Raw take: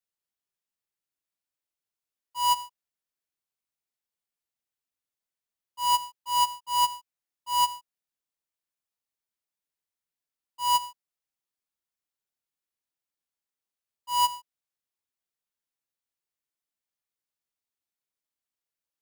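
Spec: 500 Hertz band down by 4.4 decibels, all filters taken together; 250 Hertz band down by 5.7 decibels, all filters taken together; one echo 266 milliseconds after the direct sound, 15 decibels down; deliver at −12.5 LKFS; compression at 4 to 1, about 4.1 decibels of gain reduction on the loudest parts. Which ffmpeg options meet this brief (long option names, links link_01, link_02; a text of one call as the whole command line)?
ffmpeg -i in.wav -af "equalizer=frequency=250:width_type=o:gain=-5,equalizer=frequency=500:width_type=o:gain=-4.5,acompressor=threshold=-25dB:ratio=4,aecho=1:1:266:0.178,volume=18dB" out.wav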